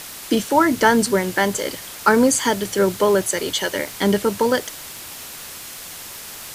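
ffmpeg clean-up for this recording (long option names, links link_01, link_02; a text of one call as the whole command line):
ffmpeg -i in.wav -af "adeclick=threshold=4,afwtdn=0.02" out.wav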